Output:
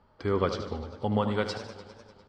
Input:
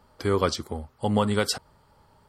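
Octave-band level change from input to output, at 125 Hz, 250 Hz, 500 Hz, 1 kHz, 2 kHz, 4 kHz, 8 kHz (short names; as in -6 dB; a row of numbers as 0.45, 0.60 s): -3.0, -3.5, -3.0, -3.5, -4.0, -8.5, -16.5 dB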